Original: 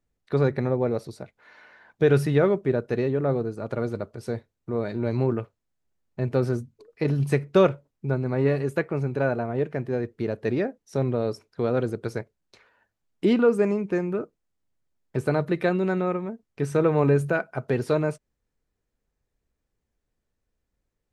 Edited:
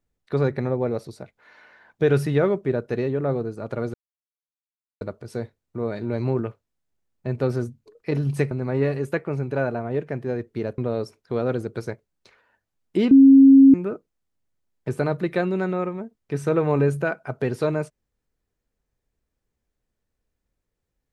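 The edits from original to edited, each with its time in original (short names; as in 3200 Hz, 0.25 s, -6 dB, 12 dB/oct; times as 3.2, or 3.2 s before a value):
3.94 insert silence 1.07 s
7.44–8.15 cut
10.42–11.06 cut
13.39–14.02 bleep 271 Hz -7 dBFS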